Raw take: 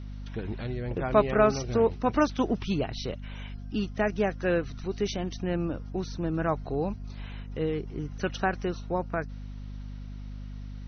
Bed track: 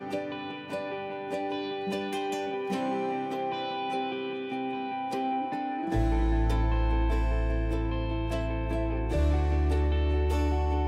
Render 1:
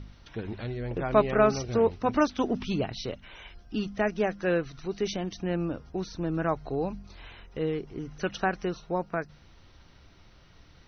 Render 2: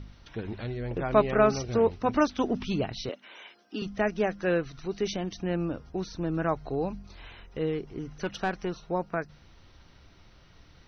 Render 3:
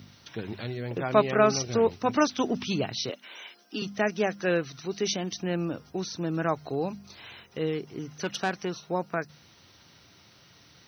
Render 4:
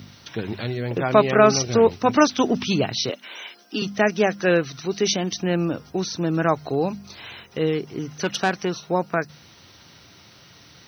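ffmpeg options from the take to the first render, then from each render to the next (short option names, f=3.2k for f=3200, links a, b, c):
-af "bandreject=f=50:t=h:w=4,bandreject=f=100:t=h:w=4,bandreject=f=150:t=h:w=4,bandreject=f=200:t=h:w=4,bandreject=f=250:t=h:w=4"
-filter_complex "[0:a]asettb=1/sr,asplit=3[a][b][c];[a]atrim=end=3.094[d];[b]atrim=start=3.09:end=3.82,asetpts=PTS-STARTPTS,afade=t=in:d=0.004:c=qsin,afade=t=out:st=0.726:d=0.004:c=qsin,highpass=f=250:w=0.5412,highpass=f=250:w=1.3066[e];[c]atrim=start=3.816[f];[d][e]acrossfade=d=0.004:c1=hsin:c2=qsin[g];[g][f]acrossfade=d=0.004:c1=qsin:c2=hsin,asettb=1/sr,asplit=3[h][i][j];[h]atrim=end=8.134[k];[i]atrim=start=8.13:end=8.82,asetpts=PTS-STARTPTS,afade=t=in:d=0.004:c=qsin,afade=t=out:st=0.686:d=0.004:c=qsin,aeval=exprs='(tanh(10*val(0)+0.35)-tanh(0.35))/10':c=same[l];[j]atrim=start=8.816[m];[k][l]acrossfade=d=0.004:c1=hsin:c2=qsin[n];[n][m]acrossfade=d=0.004:c1=qsin:c2=hsin"
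-af "highpass=f=99:w=0.5412,highpass=f=99:w=1.3066,aemphasis=mode=production:type=75kf"
-af "volume=7dB,alimiter=limit=-2dB:level=0:latency=1"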